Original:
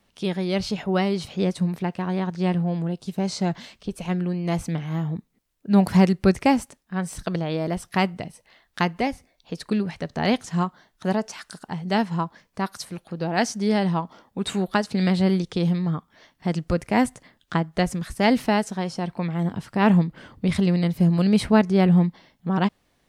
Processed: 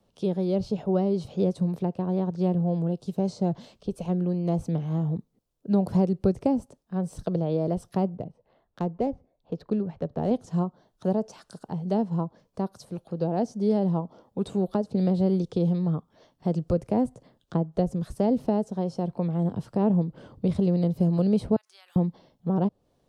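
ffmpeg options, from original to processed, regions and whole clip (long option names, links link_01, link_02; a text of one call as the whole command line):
ffmpeg -i in.wav -filter_complex "[0:a]asettb=1/sr,asplit=3[link_01][link_02][link_03];[link_01]atrim=end=8.094[link_04];[link_02]atrim=start=8.09:end=10.31,asetpts=PTS-STARTPTS,afade=type=in:duration=0.004:curve=qsin,afade=type=out:start_time=2.216:duration=0.004:curve=qsin,tremolo=f=2:d=0.29,adynamicsmooth=sensitivity=2:basefreq=2000[link_05];[link_03]atrim=start=10.306[link_06];[link_04][link_05]acrossfade=duration=0.004:curve1=hsin:curve2=qsin[link_07];[link_07][link_06]acrossfade=duration=0.004:curve1=qsin:curve2=hsin,asettb=1/sr,asplit=3[link_08][link_09][link_10];[link_08]atrim=end=21.564[link_11];[link_09]atrim=start=21.56:end=21.96,asetpts=PTS-STARTPTS,afade=type=in:duration=0.004:curve=qsin,afade=type=out:start_time=0.396:duration=0.004:curve=qsin,highpass=frequency=1500:width=0.5412,highpass=frequency=1500:width=1.3066,highshelf=frequency=8100:gain=11.5,acompressor=threshold=-35dB:ratio=4:attack=3.2:release=140:knee=1:detection=peak[link_12];[link_10]atrim=start=21.956[link_13];[link_11][link_12]acrossfade=duration=0.004:curve1=hsin:curve2=qsin[link_14];[link_14][link_13]acrossfade=duration=0.004:curve1=qsin:curve2=hsin,highshelf=frequency=5900:gain=-6.5,acrossover=split=260|820[link_15][link_16][link_17];[link_15]acompressor=threshold=-23dB:ratio=4[link_18];[link_16]acompressor=threshold=-24dB:ratio=4[link_19];[link_17]acompressor=threshold=-40dB:ratio=4[link_20];[link_18][link_19][link_20]amix=inputs=3:normalize=0,equalizer=frequency=125:width_type=o:width=1:gain=5,equalizer=frequency=500:width_type=o:width=1:gain=7,equalizer=frequency=2000:width_type=o:width=1:gain=-12,volume=-3.5dB" out.wav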